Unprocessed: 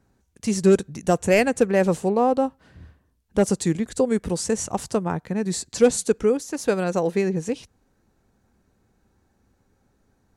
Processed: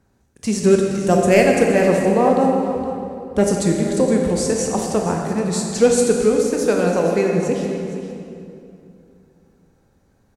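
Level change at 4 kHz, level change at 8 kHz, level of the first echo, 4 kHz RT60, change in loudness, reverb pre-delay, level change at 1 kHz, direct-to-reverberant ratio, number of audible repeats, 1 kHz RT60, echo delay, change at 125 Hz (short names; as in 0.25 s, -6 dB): +4.5 dB, +4.0 dB, -13.0 dB, 1.9 s, +4.5 dB, 20 ms, +5.0 dB, 0.5 dB, 1, 2.5 s, 0.466 s, +5.0 dB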